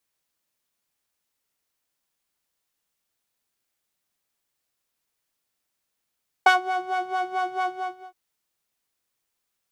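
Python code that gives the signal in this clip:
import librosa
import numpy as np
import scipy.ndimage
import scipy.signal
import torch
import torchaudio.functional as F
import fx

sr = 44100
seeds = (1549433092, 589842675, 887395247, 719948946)

y = fx.sub_patch_wobble(sr, seeds[0], note=78, wave='saw', wave2='saw', interval_st=7, level2_db=-9.0, sub_db=-16.0, noise_db=-25.5, kind='bandpass', cutoff_hz=260.0, q=1.3, env_oct=1.5, env_decay_s=0.27, env_sustain_pct=40, attack_ms=4.1, decay_s=0.12, sustain_db=-13.0, release_s=0.47, note_s=1.2, lfo_hz=4.5, wobble_oct=1.4)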